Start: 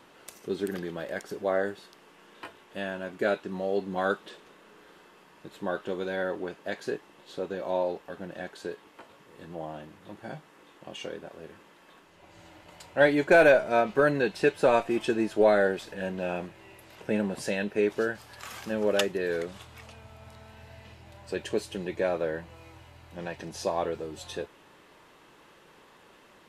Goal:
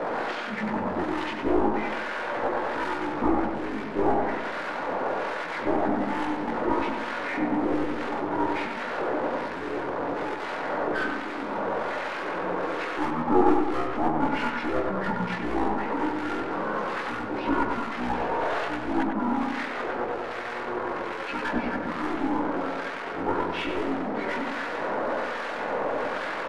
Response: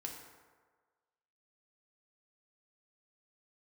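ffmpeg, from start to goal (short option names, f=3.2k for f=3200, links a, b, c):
-filter_complex "[0:a]aeval=exprs='val(0)+0.5*0.0376*sgn(val(0))':c=same,alimiter=limit=-16dB:level=0:latency=1:release=466,asuperpass=centerf=1600:order=4:qfactor=0.51,aeval=exprs='clip(val(0),-1,0.0188)':c=same,asplit=2[a][b];[b]adelay=18,volume=-2dB[c];[a][c]amix=inputs=2:normalize=0,asplit=2[d][e];[1:a]atrim=start_sample=2205,atrim=end_sample=3969,asetrate=79380,aresample=44100[f];[e][f]afir=irnorm=-1:irlink=0,volume=-8dB[g];[d][g]amix=inputs=2:normalize=0,acontrast=60,aeval=exprs='val(0)+0.00631*sin(2*PI*1700*n/s)':c=same,asetrate=24046,aresample=44100,atempo=1.83401,acrossover=split=1300[h][i];[h]aeval=exprs='val(0)*(1-0.7/2+0.7/2*cos(2*PI*1.2*n/s))':c=same[j];[i]aeval=exprs='val(0)*(1-0.7/2-0.7/2*cos(2*PI*1.2*n/s))':c=same[k];[j][k]amix=inputs=2:normalize=0,asplit=2[l][m];[m]adelay=99,lowpass=f=2.2k:p=1,volume=-4dB,asplit=2[n][o];[o]adelay=99,lowpass=f=2.2k:p=1,volume=0.54,asplit=2[p][q];[q]adelay=99,lowpass=f=2.2k:p=1,volume=0.54,asplit=2[r][s];[s]adelay=99,lowpass=f=2.2k:p=1,volume=0.54,asplit=2[t][u];[u]adelay=99,lowpass=f=2.2k:p=1,volume=0.54,asplit=2[v][w];[w]adelay=99,lowpass=f=2.2k:p=1,volume=0.54,asplit=2[x][y];[y]adelay=99,lowpass=f=2.2k:p=1,volume=0.54[z];[l][n][p][r][t][v][x][z]amix=inputs=8:normalize=0,volume=1dB"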